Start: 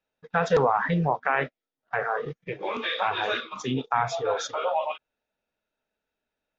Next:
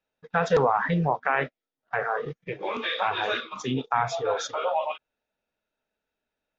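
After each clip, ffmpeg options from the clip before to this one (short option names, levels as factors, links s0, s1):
-af anull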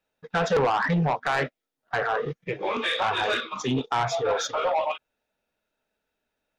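-af "asoftclip=type=tanh:threshold=0.0841,volume=1.58"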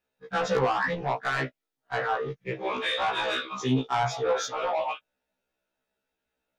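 -af "afftfilt=real='re*1.73*eq(mod(b,3),0)':imag='im*1.73*eq(mod(b,3),0)':win_size=2048:overlap=0.75"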